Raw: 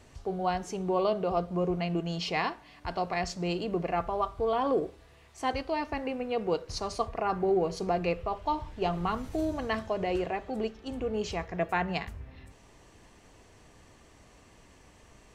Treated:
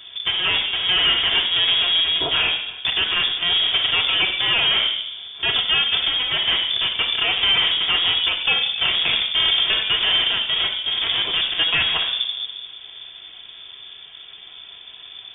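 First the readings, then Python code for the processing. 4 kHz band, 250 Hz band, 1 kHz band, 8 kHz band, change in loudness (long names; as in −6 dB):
+29.5 dB, −8.5 dB, 0.0 dB, below −30 dB, +14.0 dB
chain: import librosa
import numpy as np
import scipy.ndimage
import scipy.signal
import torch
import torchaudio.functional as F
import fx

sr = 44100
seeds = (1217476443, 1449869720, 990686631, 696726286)

y = fx.halfwave_hold(x, sr)
y = fx.room_shoebox(y, sr, seeds[0], volume_m3=3500.0, walls='furnished', distance_m=2.7)
y = fx.tube_stage(y, sr, drive_db=22.0, bias=0.5)
y = fx.freq_invert(y, sr, carrier_hz=3500)
y = y * 10.0 ** (8.0 / 20.0)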